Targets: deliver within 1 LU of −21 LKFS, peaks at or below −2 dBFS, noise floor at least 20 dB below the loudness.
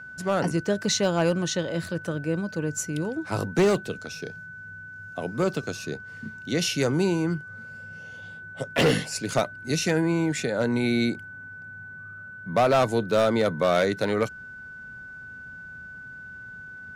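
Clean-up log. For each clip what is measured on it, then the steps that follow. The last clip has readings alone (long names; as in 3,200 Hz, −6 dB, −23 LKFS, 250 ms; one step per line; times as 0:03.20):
share of clipped samples 0.8%; peaks flattened at −15.0 dBFS; interfering tone 1,500 Hz; level of the tone −39 dBFS; integrated loudness −25.5 LKFS; sample peak −15.0 dBFS; target loudness −21.0 LKFS
→ clipped peaks rebuilt −15 dBFS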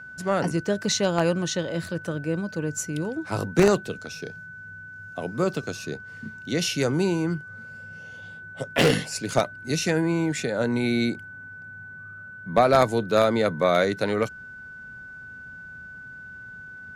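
share of clipped samples 0.0%; interfering tone 1,500 Hz; level of the tone −39 dBFS
→ notch filter 1,500 Hz, Q 30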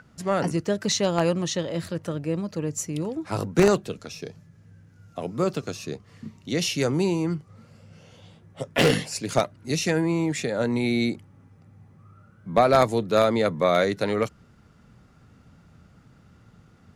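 interfering tone none found; integrated loudness −24.5 LKFS; sample peak −6.0 dBFS; target loudness −21.0 LKFS
→ level +3.5 dB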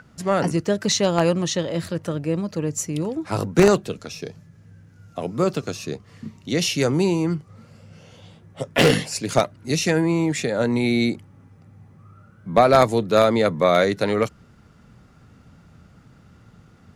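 integrated loudness −21.0 LKFS; sample peak −2.5 dBFS; background noise floor −52 dBFS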